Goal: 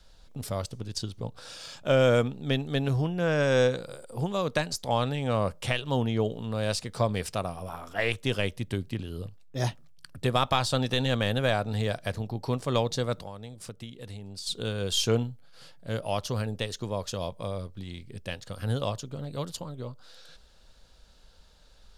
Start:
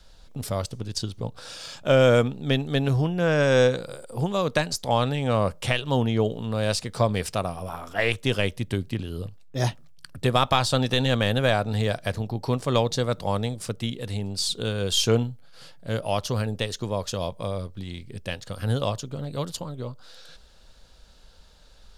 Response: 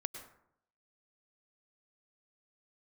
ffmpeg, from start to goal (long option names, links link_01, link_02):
-filter_complex "[0:a]asplit=3[link_01][link_02][link_03];[link_01]afade=type=out:start_time=13.22:duration=0.02[link_04];[link_02]acompressor=threshold=-34dB:ratio=6,afade=type=in:start_time=13.22:duration=0.02,afade=type=out:start_time=14.46:duration=0.02[link_05];[link_03]afade=type=in:start_time=14.46:duration=0.02[link_06];[link_04][link_05][link_06]amix=inputs=3:normalize=0,volume=-4dB"